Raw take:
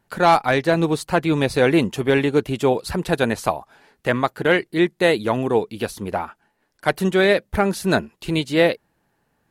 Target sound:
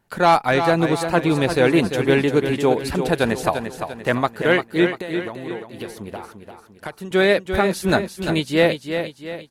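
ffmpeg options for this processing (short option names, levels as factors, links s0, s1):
-filter_complex "[0:a]asettb=1/sr,asplit=3[s0][s1][s2];[s0]atrim=end=4.934[s3];[s1]atrim=start=4.93:end=7.11,asetpts=PTS-STARTPTS,afade=t=in:d=0.004:c=qsin,afade=t=out:st=2.176:d=0.004:c=qsin,acompressor=threshold=0.0355:ratio=12[s4];[s2]atrim=start=7.106[s5];[s3][s4]acrossfade=d=0.004:c1=hsin:c2=qsin[s6];[s6][s5]acrossfade=d=0.004:c1=qsin:c2=hsin,aecho=1:1:345|690|1035|1380|1725:0.398|0.175|0.0771|0.0339|0.0149"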